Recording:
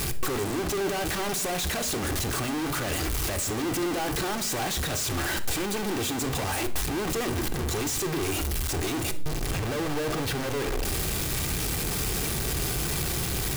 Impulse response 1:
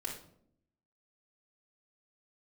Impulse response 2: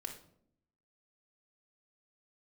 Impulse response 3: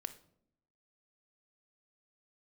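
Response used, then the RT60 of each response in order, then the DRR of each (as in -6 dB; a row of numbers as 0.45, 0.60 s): 3; 0.65, 0.65, 0.70 s; -5.5, 0.5, 8.0 dB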